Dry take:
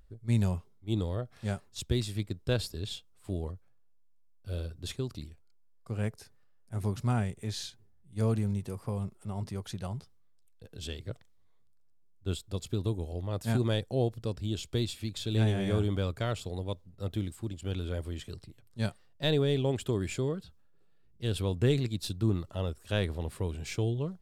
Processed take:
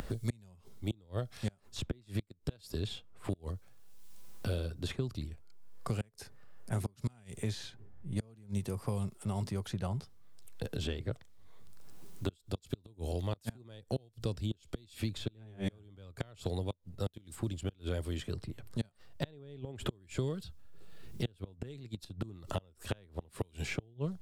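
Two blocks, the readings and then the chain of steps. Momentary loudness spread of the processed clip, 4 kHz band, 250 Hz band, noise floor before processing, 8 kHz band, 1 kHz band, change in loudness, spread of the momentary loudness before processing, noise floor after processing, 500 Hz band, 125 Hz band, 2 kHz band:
9 LU, -6.5 dB, -6.0 dB, -60 dBFS, -5.0 dB, -5.0 dB, -6.5 dB, 12 LU, -65 dBFS, -7.5 dB, -6.5 dB, -5.5 dB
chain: inverted gate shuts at -22 dBFS, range -32 dB; three bands compressed up and down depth 100%; trim +1 dB

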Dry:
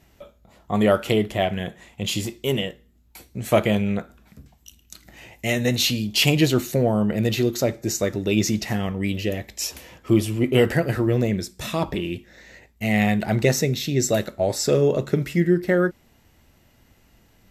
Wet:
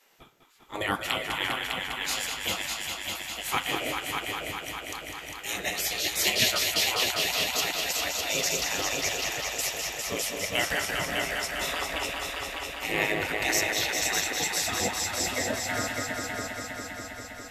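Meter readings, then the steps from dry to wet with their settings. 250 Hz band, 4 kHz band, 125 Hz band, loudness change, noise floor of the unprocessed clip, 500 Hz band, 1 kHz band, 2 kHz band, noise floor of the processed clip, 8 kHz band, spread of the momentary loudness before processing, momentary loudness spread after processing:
-16.5 dB, +1.5 dB, -19.0 dB, -5.5 dB, -58 dBFS, -12.0 dB, -0.5 dB, +1.5 dB, -42 dBFS, +2.5 dB, 10 LU, 10 LU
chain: multi-head delay 201 ms, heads all three, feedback 69%, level -8 dB; spectral gate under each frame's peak -15 dB weak

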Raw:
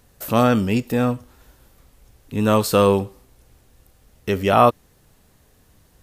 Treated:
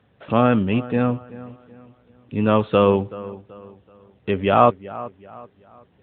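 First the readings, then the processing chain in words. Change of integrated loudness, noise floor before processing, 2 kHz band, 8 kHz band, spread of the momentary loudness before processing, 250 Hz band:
-0.5 dB, -57 dBFS, -1.0 dB, under -40 dB, 15 LU, 0.0 dB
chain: feedback echo behind a low-pass 380 ms, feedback 37%, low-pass 2.4 kHz, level -17 dB; AMR-NB 12.2 kbps 8 kHz

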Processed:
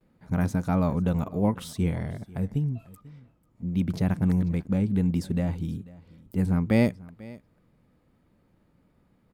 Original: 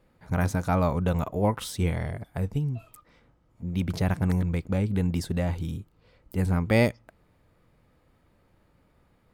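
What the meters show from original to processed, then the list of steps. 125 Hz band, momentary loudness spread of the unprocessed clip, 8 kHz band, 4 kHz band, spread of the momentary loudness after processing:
0.0 dB, 10 LU, no reading, -5.0 dB, 14 LU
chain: gate with hold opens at -59 dBFS; peaking EQ 210 Hz +9 dB 1.5 oct; delay 492 ms -21 dB; trim -5 dB

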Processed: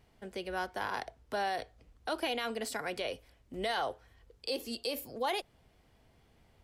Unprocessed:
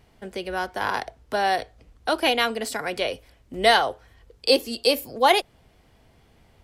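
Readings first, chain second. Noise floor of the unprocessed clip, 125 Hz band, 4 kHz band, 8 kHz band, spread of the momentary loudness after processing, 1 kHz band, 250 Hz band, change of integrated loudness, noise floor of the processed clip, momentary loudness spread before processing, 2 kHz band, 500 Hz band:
-59 dBFS, -8.5 dB, -14.0 dB, -10.5 dB, 11 LU, -13.0 dB, -11.0 dB, -13.0 dB, -67 dBFS, 14 LU, -13.0 dB, -13.0 dB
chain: peak limiter -16.5 dBFS, peak gain reduction 11.5 dB; trim -8 dB

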